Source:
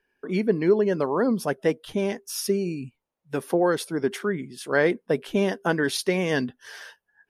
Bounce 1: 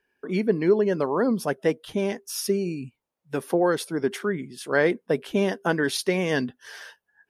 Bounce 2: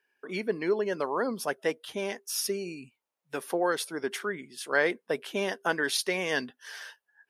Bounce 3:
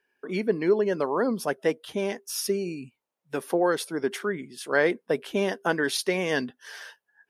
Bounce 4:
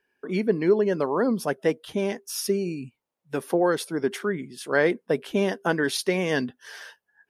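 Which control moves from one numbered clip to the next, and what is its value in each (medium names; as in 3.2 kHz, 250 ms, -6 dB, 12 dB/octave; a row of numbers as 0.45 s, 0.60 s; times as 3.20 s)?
high-pass, cutoff frequency: 48 Hz, 840 Hz, 320 Hz, 120 Hz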